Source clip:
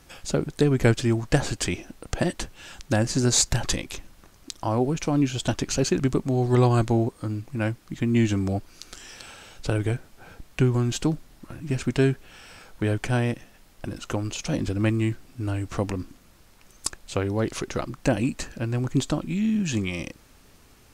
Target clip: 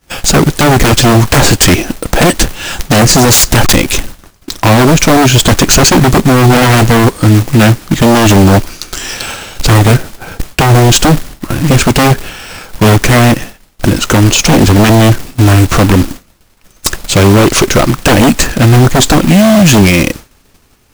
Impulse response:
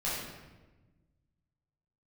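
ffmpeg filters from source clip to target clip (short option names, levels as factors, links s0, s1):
-af "agate=range=0.0224:threshold=0.01:ratio=3:detection=peak,acrusher=bits=2:mode=log:mix=0:aa=0.000001,aeval=exprs='0.668*sin(PI/2*8.91*val(0)/0.668)':c=same,volume=1.33"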